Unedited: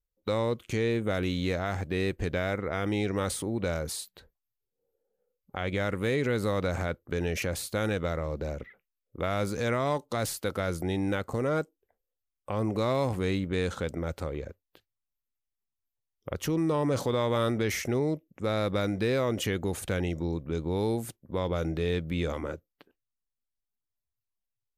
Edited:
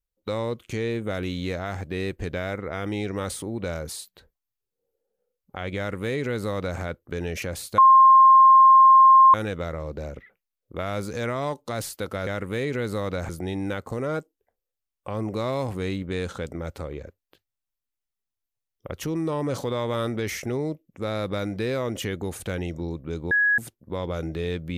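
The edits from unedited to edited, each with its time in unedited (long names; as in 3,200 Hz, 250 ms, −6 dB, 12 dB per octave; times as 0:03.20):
0:05.78–0:06.80: duplicate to 0:10.71
0:07.78: insert tone 1,060 Hz −9.5 dBFS 1.56 s
0:20.73–0:21.00: beep over 1,670 Hz −17 dBFS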